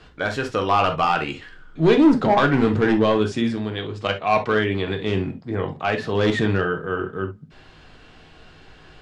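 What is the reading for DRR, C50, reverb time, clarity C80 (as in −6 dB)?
4.5 dB, 11.5 dB, non-exponential decay, 60.0 dB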